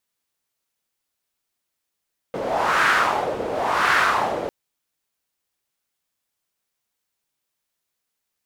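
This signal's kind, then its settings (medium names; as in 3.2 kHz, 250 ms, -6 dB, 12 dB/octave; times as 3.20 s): wind-like swept noise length 2.15 s, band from 490 Hz, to 1.5 kHz, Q 2.8, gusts 2, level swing 8.5 dB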